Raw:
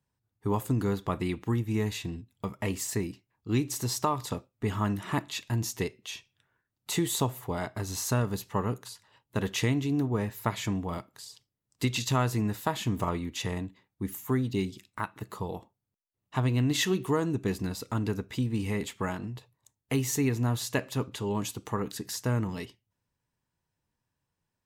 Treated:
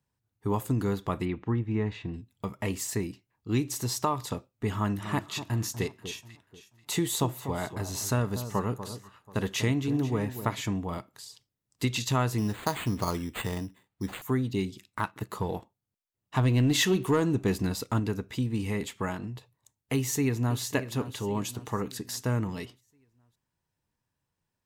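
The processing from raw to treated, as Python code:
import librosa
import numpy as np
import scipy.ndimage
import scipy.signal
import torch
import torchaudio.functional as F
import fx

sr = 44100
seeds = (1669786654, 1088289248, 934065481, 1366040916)

y = fx.lowpass(x, sr, hz=2300.0, slope=12, at=(1.25, 2.14))
y = fx.echo_alternate(y, sr, ms=243, hz=1200.0, feedback_pct=50, wet_db=-10.5, at=(5.0, 10.6), fade=0.02)
y = fx.resample_bad(y, sr, factor=8, down='none', up='hold', at=(12.38, 14.22))
y = fx.leveller(y, sr, passes=1, at=(14.85, 18.0))
y = fx.echo_throw(y, sr, start_s=19.95, length_s=0.65, ms=550, feedback_pct=45, wet_db=-12.0)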